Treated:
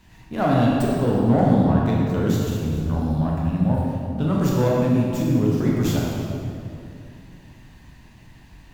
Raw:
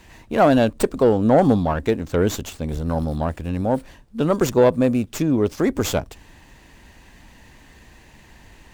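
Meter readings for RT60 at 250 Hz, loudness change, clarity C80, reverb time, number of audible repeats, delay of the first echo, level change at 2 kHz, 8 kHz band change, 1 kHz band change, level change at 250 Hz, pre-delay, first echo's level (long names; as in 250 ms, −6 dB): 3.1 s, −1.0 dB, 0.0 dB, 2.5 s, no echo audible, no echo audible, −3.5 dB, −5.5 dB, −3.0 dB, +1.0 dB, 9 ms, no echo audible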